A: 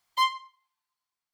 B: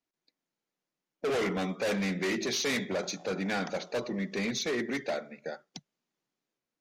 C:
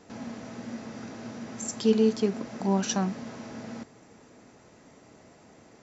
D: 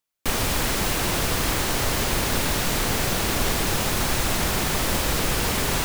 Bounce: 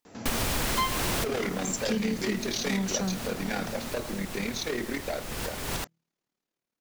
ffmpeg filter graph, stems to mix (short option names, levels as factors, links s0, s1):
-filter_complex "[0:a]adelay=600,volume=1.26[s0];[1:a]bandreject=f=163.7:t=h:w=4,bandreject=f=327.4:t=h:w=4,bandreject=f=491.1:t=h:w=4,tremolo=f=37:d=0.667,volume=1.33,asplit=2[s1][s2];[2:a]acrossover=split=180|3000[s3][s4][s5];[s4]acompressor=threshold=0.00562:ratio=2[s6];[s3][s6][s5]amix=inputs=3:normalize=0,adelay=50,volume=1.41[s7];[3:a]volume=0.794[s8];[s2]apad=whole_len=257620[s9];[s8][s9]sidechaincompress=threshold=0.00398:ratio=5:attack=38:release=371[s10];[s0][s1][s7][s10]amix=inputs=4:normalize=0,acompressor=threshold=0.0631:ratio=4"